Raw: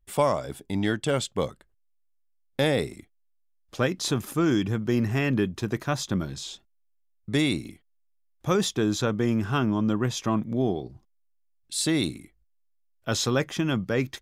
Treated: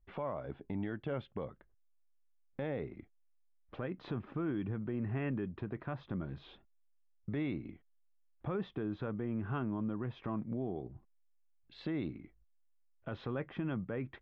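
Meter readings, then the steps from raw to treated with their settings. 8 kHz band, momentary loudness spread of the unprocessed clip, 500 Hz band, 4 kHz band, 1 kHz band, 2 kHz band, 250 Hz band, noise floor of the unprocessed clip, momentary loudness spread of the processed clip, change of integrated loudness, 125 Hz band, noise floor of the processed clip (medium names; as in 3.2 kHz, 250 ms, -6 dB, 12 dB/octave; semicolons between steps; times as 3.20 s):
under -40 dB, 10 LU, -13.5 dB, -25.0 dB, -14.5 dB, -16.0 dB, -12.0 dB, -68 dBFS, 14 LU, -13.0 dB, -11.5 dB, -69 dBFS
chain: Bessel low-pass 1.7 kHz, order 6; compression 2:1, threshold -37 dBFS, peak gain reduction 10.5 dB; peak limiter -27 dBFS, peak gain reduction 7.5 dB; trim -1.5 dB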